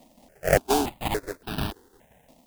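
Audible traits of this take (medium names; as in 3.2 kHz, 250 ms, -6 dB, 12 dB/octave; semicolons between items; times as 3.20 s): aliases and images of a low sample rate 1.2 kHz, jitter 20%; tremolo saw down 5.7 Hz, depth 65%; a quantiser's noise floor 12-bit, dither triangular; notches that jump at a steady rate 3.5 Hz 410–2000 Hz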